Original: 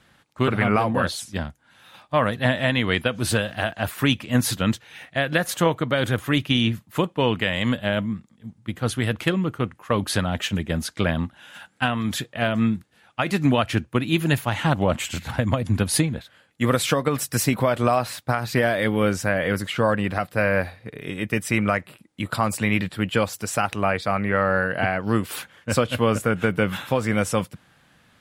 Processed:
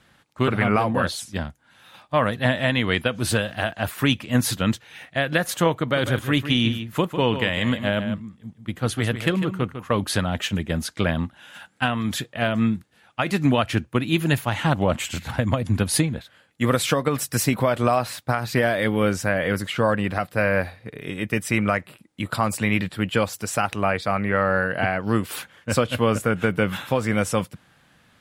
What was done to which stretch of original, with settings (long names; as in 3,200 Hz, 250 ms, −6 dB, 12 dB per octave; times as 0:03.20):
0:05.73–0:09.99: single-tap delay 150 ms −10 dB